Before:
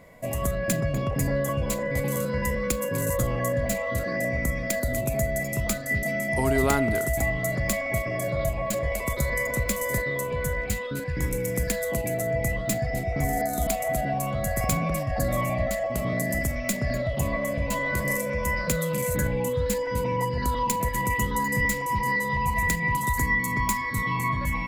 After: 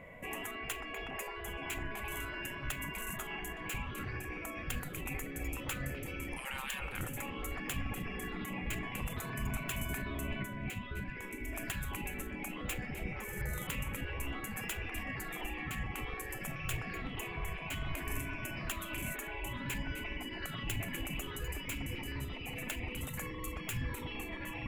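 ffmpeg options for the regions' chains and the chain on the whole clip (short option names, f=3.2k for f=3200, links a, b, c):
-filter_complex "[0:a]asettb=1/sr,asplit=3[a][b][c];[a]atrim=end=10.424[d];[b]atrim=start=10.42:end=11.53,asetpts=PTS-STARTPTS,afade=t=in:d=0.004:c=qsin,afade=t=out:st=1.106:d=0.004:c=qsin,highshelf=f=4.2k:g=-6.5,acrossover=split=440|3000[e][f][g];[f]acompressor=threshold=-42dB:ratio=3:attack=3.2:release=140:knee=2.83:detection=peak[h];[e][h][g]amix=inputs=3:normalize=0[i];[c]atrim=start=11.526[j];[d][i]acrossfade=d=0.004:c1=hsin:c2=qsin[k];[k][j]acrossfade=d=0.004:c1=qsin:c2=hsin,highshelf=f=3.5k:t=q:w=3:g=-9,afftfilt=real='re*lt(hypot(re,im),0.0794)':imag='im*lt(hypot(re,im),0.0794)':win_size=1024:overlap=0.75,asubboost=boost=5:cutoff=200,volume=-2dB"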